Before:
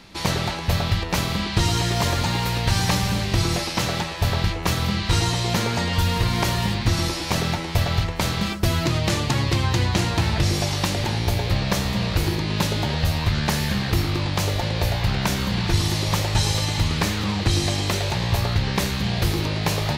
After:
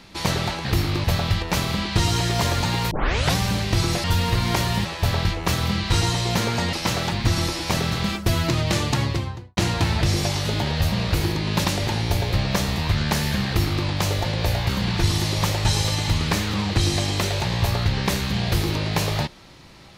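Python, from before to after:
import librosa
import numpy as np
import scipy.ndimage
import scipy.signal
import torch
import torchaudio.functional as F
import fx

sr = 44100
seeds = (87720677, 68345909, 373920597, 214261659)

y = fx.studio_fade_out(x, sr, start_s=9.3, length_s=0.64)
y = fx.edit(y, sr, fx.tape_start(start_s=2.52, length_s=0.45),
    fx.swap(start_s=3.65, length_s=0.39, other_s=5.92, other_length_s=0.81),
    fx.cut(start_s=7.53, length_s=0.76),
    fx.swap(start_s=10.82, length_s=1.13, other_s=12.68, other_length_s=0.47),
    fx.duplicate(start_s=13.85, length_s=0.39, to_s=0.65),
    fx.cut(start_s=15.06, length_s=0.33), tone=tone)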